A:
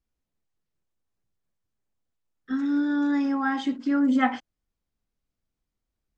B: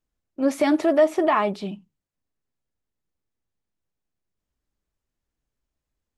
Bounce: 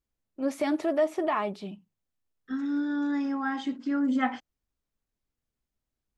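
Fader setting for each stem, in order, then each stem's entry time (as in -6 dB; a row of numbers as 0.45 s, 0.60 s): -4.5 dB, -7.5 dB; 0.00 s, 0.00 s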